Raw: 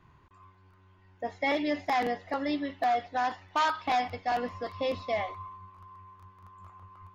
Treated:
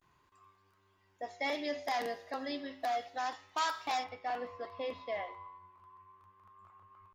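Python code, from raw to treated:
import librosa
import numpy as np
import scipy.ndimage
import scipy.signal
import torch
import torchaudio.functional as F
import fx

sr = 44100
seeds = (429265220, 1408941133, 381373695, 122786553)

y = fx.comb_fb(x, sr, f0_hz=54.0, decay_s=0.82, harmonics='odd', damping=0.0, mix_pct=60)
y = fx.vibrato(y, sr, rate_hz=0.33, depth_cents=56.0)
y = fx.bass_treble(y, sr, bass_db=-9, treble_db=fx.steps((0.0, 10.0), (4.03, -6.0)))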